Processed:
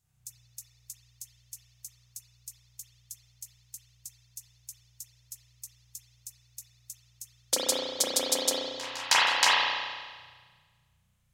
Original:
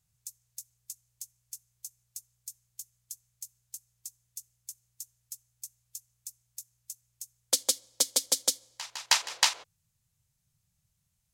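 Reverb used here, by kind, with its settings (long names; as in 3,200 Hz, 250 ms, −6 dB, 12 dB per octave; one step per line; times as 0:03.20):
spring reverb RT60 1.5 s, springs 33 ms, chirp 60 ms, DRR −9 dB
level −1.5 dB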